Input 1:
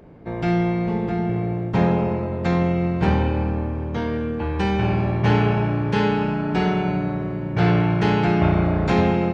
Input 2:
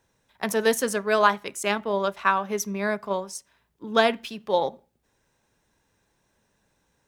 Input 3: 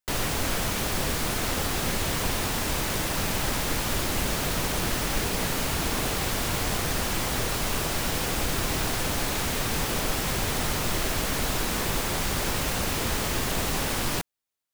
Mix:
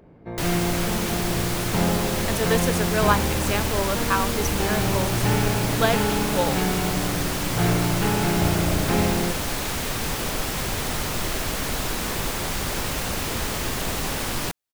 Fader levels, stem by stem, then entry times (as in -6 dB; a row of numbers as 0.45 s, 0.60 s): -4.5 dB, -2.0 dB, +0.5 dB; 0.00 s, 1.85 s, 0.30 s